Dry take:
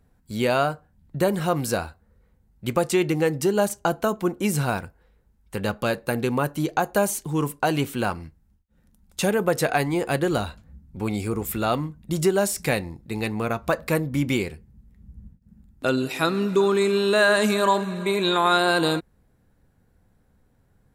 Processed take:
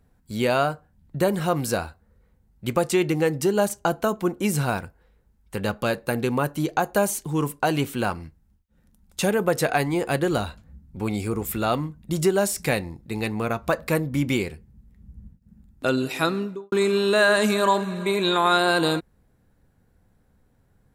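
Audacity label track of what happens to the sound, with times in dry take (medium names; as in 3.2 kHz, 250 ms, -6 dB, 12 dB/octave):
16.220000	16.720000	studio fade out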